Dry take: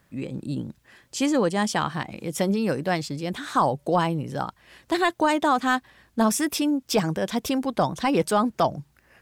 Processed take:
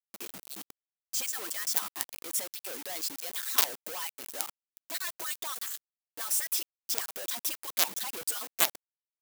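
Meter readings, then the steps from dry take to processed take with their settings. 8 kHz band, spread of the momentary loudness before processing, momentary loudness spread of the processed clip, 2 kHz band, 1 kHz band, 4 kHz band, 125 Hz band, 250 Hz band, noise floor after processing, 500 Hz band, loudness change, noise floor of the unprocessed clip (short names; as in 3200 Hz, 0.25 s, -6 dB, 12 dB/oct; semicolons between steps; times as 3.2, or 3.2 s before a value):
+2.5 dB, 10 LU, 12 LU, -9.5 dB, -17.5 dB, -2.5 dB, under -30 dB, -28.5 dB, under -85 dBFS, -20.5 dB, -6.5 dB, -63 dBFS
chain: median-filter separation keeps percussive; companded quantiser 2-bit; RIAA curve recording; gain -14.5 dB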